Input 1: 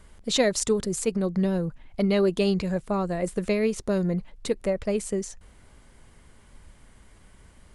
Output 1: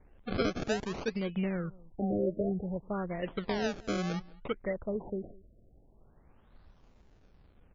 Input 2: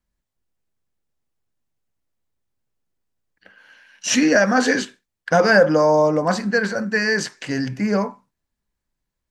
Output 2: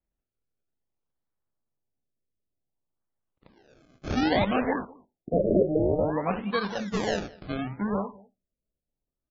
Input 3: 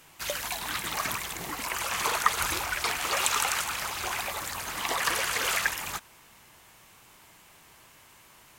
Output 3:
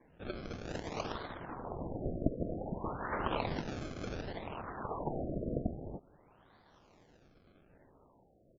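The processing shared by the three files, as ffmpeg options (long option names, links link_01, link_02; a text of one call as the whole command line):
ffmpeg -i in.wav -af "acrusher=samples=32:mix=1:aa=0.000001:lfo=1:lforange=32:lforate=0.57,aecho=1:1:202:0.0708,afftfilt=real='re*lt(b*sr/1024,680*pow(7500/680,0.5+0.5*sin(2*PI*0.32*pts/sr)))':imag='im*lt(b*sr/1024,680*pow(7500/680,0.5+0.5*sin(2*PI*0.32*pts/sr)))':win_size=1024:overlap=0.75,volume=-8dB" out.wav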